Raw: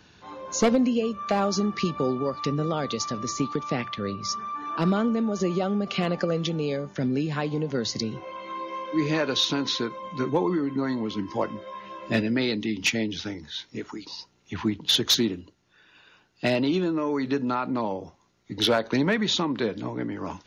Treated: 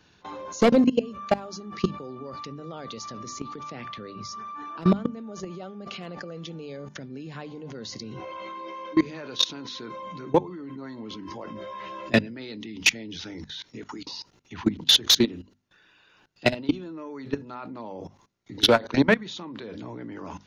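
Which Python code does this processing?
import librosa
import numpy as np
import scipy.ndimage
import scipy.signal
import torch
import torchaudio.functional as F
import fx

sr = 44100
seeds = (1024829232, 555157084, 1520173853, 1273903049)

y = fx.level_steps(x, sr, step_db=22)
y = fx.hum_notches(y, sr, base_hz=50, count=5)
y = F.gain(torch.from_numpy(y), 6.5).numpy()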